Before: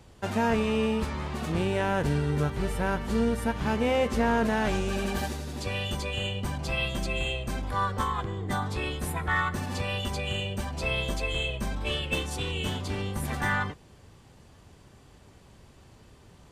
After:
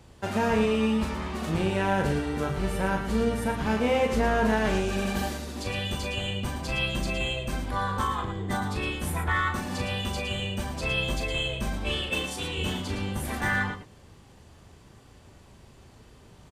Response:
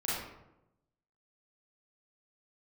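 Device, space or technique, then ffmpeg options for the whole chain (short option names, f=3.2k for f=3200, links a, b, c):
slapback doubling: -filter_complex "[0:a]asettb=1/sr,asplit=3[a][b][c];[a]atrim=end=12.104[d];[b]atrim=start=12.1:end=12.58,asetpts=PTS-STARTPTS,afade=t=in:d=0.004:c=qsin,afade=t=out:st=0.476:d=0.004:c=qsin,lowshelf=f=120:g=-11[e];[c]atrim=start=12.576[f];[d][e]acrossfade=d=0.004:c1=hsin:c2=qsin[g];[g][f]acrossfade=d=0.004:c1=qsin:c2=hsin,asplit=3[h][i][j];[i]adelay=37,volume=-6dB[k];[j]adelay=113,volume=-8dB[l];[h][k][l]amix=inputs=3:normalize=0"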